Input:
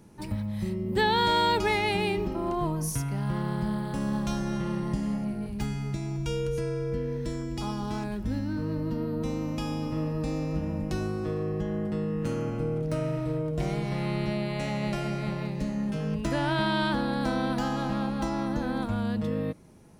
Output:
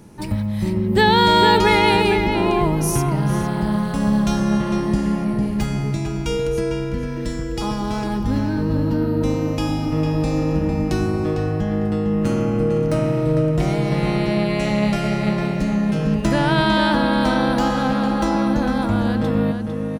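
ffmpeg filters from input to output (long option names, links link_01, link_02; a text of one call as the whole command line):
ffmpeg -i in.wav -filter_complex "[0:a]asplit=2[link_01][link_02];[link_02]adelay=452,lowpass=frequency=3200:poles=1,volume=-5dB,asplit=2[link_03][link_04];[link_04]adelay=452,lowpass=frequency=3200:poles=1,volume=0.29,asplit=2[link_05][link_06];[link_06]adelay=452,lowpass=frequency=3200:poles=1,volume=0.29,asplit=2[link_07][link_08];[link_08]adelay=452,lowpass=frequency=3200:poles=1,volume=0.29[link_09];[link_01][link_03][link_05][link_07][link_09]amix=inputs=5:normalize=0,volume=9dB" out.wav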